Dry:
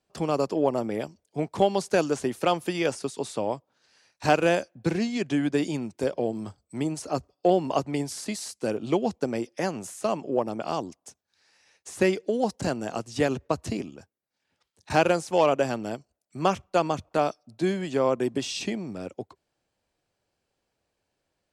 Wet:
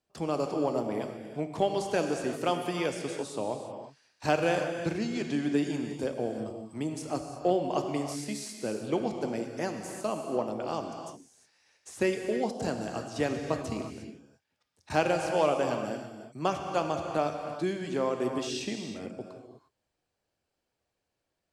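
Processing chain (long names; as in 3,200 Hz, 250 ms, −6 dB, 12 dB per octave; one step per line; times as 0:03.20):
reverb whose tail is shaped and stops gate 380 ms flat, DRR 4 dB
level −5.5 dB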